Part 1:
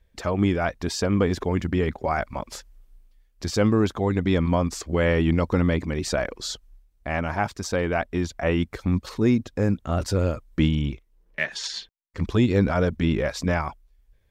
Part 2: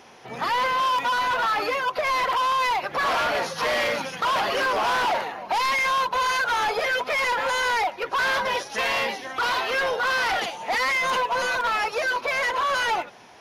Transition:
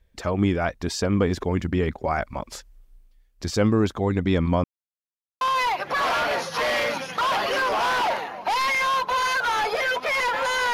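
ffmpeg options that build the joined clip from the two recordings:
-filter_complex "[0:a]apad=whole_dur=10.73,atrim=end=10.73,asplit=2[a][b];[a]atrim=end=4.64,asetpts=PTS-STARTPTS,afade=t=out:st=4.636:d=0.004:c=hsin[c];[b]atrim=start=4.64:end=5.41,asetpts=PTS-STARTPTS,volume=0[d];[1:a]atrim=start=2.45:end=7.77,asetpts=PTS-STARTPTS,afade=t=in:d=0.004:c=hsin[e];[c][d][e]concat=n=3:v=0:a=1"

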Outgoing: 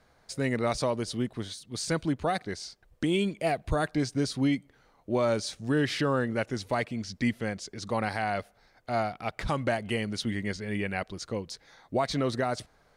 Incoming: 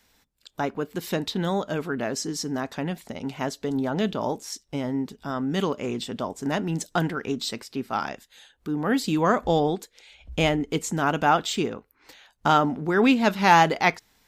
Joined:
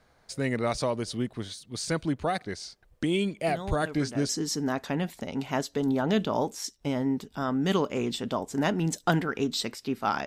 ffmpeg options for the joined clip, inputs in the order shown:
-filter_complex "[1:a]asplit=2[a][b];[0:a]apad=whole_dur=10.26,atrim=end=10.26,atrim=end=4.292[c];[b]atrim=start=2.168:end=8.14[d];[a]atrim=start=1.36:end=2.17,asetpts=PTS-STARTPTS,volume=-11.5dB,afade=t=in:d=0.004:c=hsin,afade=t=out:st=0.806:d=0.004:c=hsin,adelay=3480[e];[c][d]acrossfade=d=0.004:c1=hsin:c2=hsin[f];[f][e]amix=inputs=2:normalize=0"

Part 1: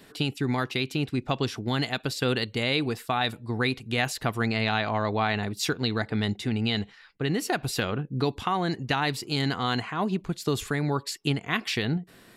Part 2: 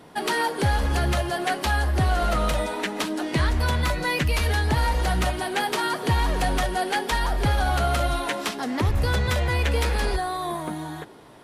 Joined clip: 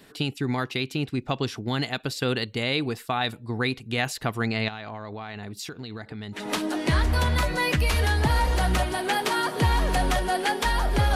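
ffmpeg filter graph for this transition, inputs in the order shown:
-filter_complex "[0:a]asettb=1/sr,asplit=3[a][b][c];[a]atrim=end=4.684[d];[b]atrim=start=4.68:end=6.5,asetpts=PTS-STARTPTS,afade=t=in:d=0.004:c=qsin,afade=t=out:st=1.816:d=0.004:c=qsin,acompressor=threshold=-32dB:ratio=10:attack=3.2:release=140:knee=1:detection=peak[e];[c]atrim=start=6.496[f];[d][e]acrossfade=d=0.004:c1=hsin:c2=qsin[g];[g][f]acrossfade=d=0.004:c1=qsin:c2=hsin,apad=whole_dur=11.15,atrim=end=11.15,atrim=end=6.5,asetpts=PTS-STARTPTS[h];[1:a]atrim=start=2.79:end=7.62,asetpts=PTS-STARTPTS[i];[h][i]acrossfade=d=0.18:c1=tri:c2=tri"

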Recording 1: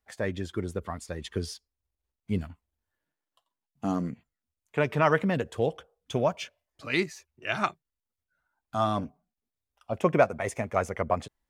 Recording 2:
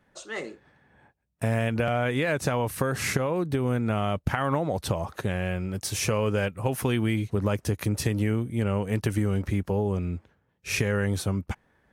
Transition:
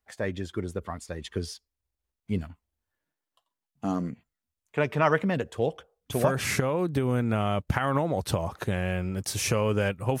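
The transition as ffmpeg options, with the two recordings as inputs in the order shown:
-filter_complex "[0:a]apad=whole_dur=10.2,atrim=end=10.2,atrim=end=6.64,asetpts=PTS-STARTPTS[a];[1:a]atrim=start=2.67:end=6.77,asetpts=PTS-STARTPTS[b];[a][b]acrossfade=d=0.54:c1=log:c2=log"

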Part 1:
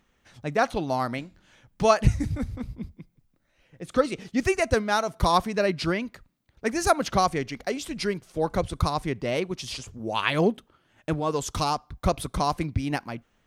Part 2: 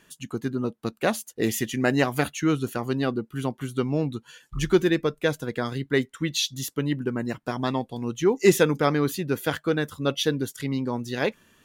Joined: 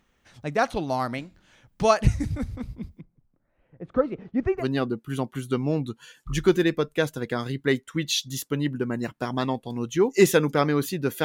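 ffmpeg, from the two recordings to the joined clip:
-filter_complex "[0:a]asplit=3[a][b][c];[a]afade=t=out:st=3:d=0.02[d];[b]lowpass=1.2k,afade=t=in:st=3:d=0.02,afade=t=out:st=4.65:d=0.02[e];[c]afade=t=in:st=4.65:d=0.02[f];[d][e][f]amix=inputs=3:normalize=0,apad=whole_dur=11.24,atrim=end=11.24,atrim=end=4.65,asetpts=PTS-STARTPTS[g];[1:a]atrim=start=2.83:end=9.5,asetpts=PTS-STARTPTS[h];[g][h]acrossfade=d=0.08:c1=tri:c2=tri"

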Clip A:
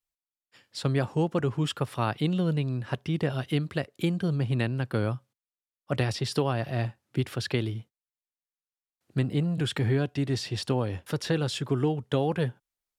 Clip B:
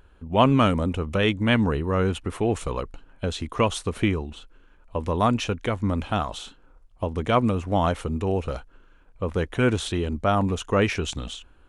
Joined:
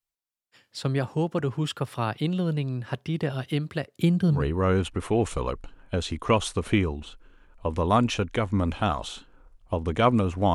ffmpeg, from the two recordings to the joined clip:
-filter_complex "[0:a]asettb=1/sr,asplit=3[a][b][c];[a]atrim=end=3.944[d];[b]atrim=start=3.94:end=4.46,asetpts=PTS-STARTPTS,afade=t=in:d=0.004:c=qsin,afade=t=out:st=0.516:d=0.004:c=qsin,bass=f=250:g=8,treble=f=4k:g=2[e];[c]atrim=start=4.456[f];[d][e]acrossfade=d=0.004:c1=hsin:c2=qsin[g];[g][f]acrossfade=d=0.004:c1=qsin:c2=hsin,apad=whole_dur=10.54,atrim=end=10.54,atrim=end=4.46,asetpts=PTS-STARTPTS[h];[1:a]atrim=start=1.6:end=7.84,asetpts=PTS-STARTPTS[i];[h][i]acrossfade=d=0.16:c1=tri:c2=tri"

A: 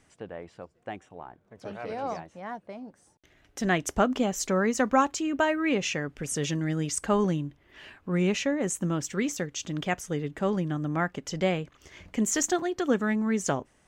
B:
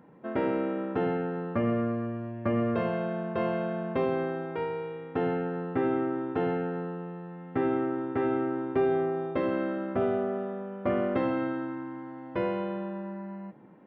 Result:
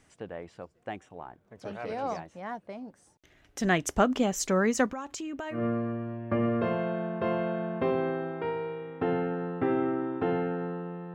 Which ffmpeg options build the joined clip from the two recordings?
-filter_complex "[0:a]asettb=1/sr,asplit=3[a][b][c];[a]atrim=end=4.864[d];[b]atrim=start=4.86:end=5.64,asetpts=PTS-STARTPTS,afade=t=in:d=0.004:c=qsin,afade=t=out:st=0.776:d=0.004:c=qsin,acompressor=threshold=-34dB:ratio=6:attack=3.2:release=140:knee=1:detection=peak[e];[c]atrim=start=5.636[f];[d][e]acrossfade=d=0.004:c1=hsin:c2=qsin[g];[g][f]acrossfade=d=0.004:c1=qsin:c2=hsin,apad=whole_dur=11.14,atrim=end=11.14,atrim=end=5.64,asetpts=PTS-STARTPTS[h];[1:a]atrim=start=1.64:end=7.28,asetpts=PTS-STARTPTS[i];[h][i]acrossfade=d=0.14:c1=tri:c2=tri"

